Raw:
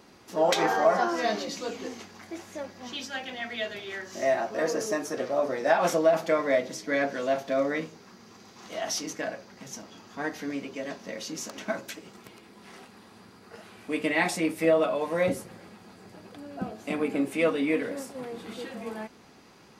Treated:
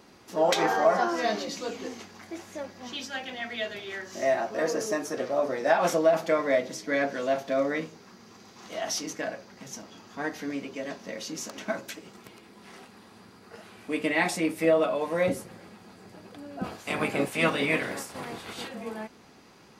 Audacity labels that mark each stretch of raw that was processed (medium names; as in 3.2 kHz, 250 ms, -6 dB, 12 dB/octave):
16.630000	18.670000	spectral peaks clipped ceiling under each frame's peak by 17 dB